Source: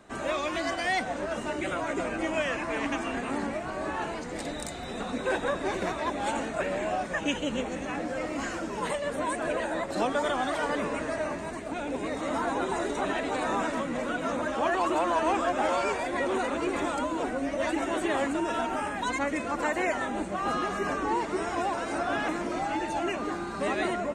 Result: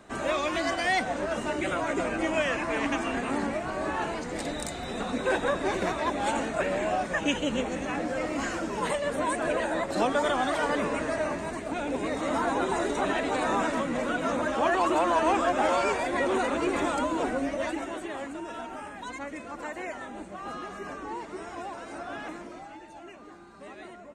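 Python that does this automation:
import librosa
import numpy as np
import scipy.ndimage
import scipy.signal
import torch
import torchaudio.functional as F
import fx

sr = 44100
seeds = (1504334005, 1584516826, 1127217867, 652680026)

y = fx.gain(x, sr, db=fx.line((17.38, 2.0), (18.09, -8.5), (22.34, -8.5), (22.81, -16.0)))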